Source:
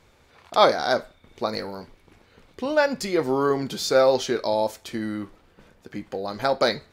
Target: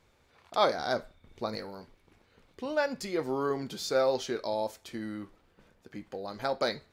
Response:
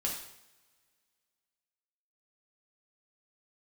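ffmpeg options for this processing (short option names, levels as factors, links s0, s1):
-filter_complex "[0:a]asettb=1/sr,asplit=3[s0][s1][s2];[s0]atrim=end=0.744[s3];[s1]atrim=start=0.74:end=1.56,asetpts=PTS-STARTPTS,afade=t=in:d=0.004:c=qsin,afade=t=out:st=0.816:d=0.004:c=qsin,lowshelf=f=170:g=8[s4];[s2]atrim=start=1.556[s5];[s3][s4]acrossfade=d=0.004:c1=hsin:c2=qsin[s6];[s6][s5]acrossfade=d=0.004:c1=qsin:c2=hsin,volume=0.376"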